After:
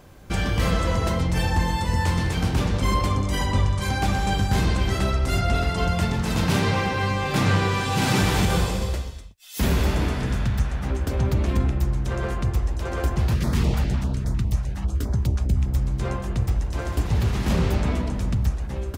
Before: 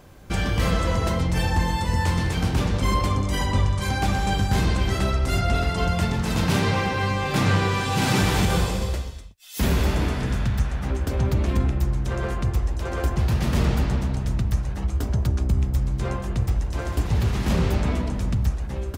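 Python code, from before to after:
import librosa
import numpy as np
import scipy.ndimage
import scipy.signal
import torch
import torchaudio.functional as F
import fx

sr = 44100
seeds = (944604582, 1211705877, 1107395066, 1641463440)

y = fx.filter_held_notch(x, sr, hz=9.9, low_hz=320.0, high_hz=2800.0, at=(13.34, 15.66), fade=0.02)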